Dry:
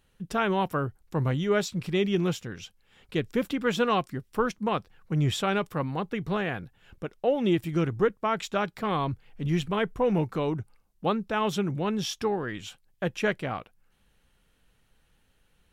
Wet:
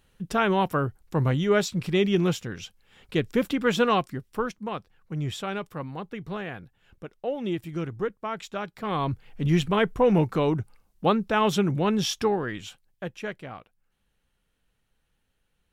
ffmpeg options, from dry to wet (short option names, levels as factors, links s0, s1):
-af "volume=4.22,afade=t=out:st=3.85:d=0.77:silence=0.398107,afade=t=in:st=8.75:d=0.51:silence=0.334965,afade=t=out:st=12.14:d=1.02:silence=0.251189"